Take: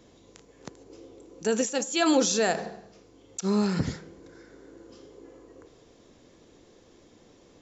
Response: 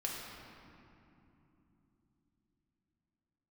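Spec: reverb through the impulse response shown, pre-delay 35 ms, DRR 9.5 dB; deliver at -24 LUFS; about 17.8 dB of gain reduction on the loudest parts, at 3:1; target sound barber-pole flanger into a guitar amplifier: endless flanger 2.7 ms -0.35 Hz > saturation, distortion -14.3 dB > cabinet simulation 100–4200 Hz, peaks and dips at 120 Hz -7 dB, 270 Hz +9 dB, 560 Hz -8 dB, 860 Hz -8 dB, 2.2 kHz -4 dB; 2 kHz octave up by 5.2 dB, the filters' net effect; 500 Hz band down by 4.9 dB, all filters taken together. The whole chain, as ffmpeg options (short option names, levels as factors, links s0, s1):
-filter_complex "[0:a]equalizer=f=500:t=o:g=-3,equalizer=f=2000:t=o:g=8.5,acompressor=threshold=0.00631:ratio=3,asplit=2[s0][s1];[1:a]atrim=start_sample=2205,adelay=35[s2];[s1][s2]afir=irnorm=-1:irlink=0,volume=0.251[s3];[s0][s3]amix=inputs=2:normalize=0,asplit=2[s4][s5];[s5]adelay=2.7,afreqshift=-0.35[s6];[s4][s6]amix=inputs=2:normalize=1,asoftclip=threshold=0.0126,highpass=100,equalizer=f=120:t=q:w=4:g=-7,equalizer=f=270:t=q:w=4:g=9,equalizer=f=560:t=q:w=4:g=-8,equalizer=f=860:t=q:w=4:g=-8,equalizer=f=2200:t=q:w=4:g=-4,lowpass=f=4200:w=0.5412,lowpass=f=4200:w=1.3066,volume=21.1"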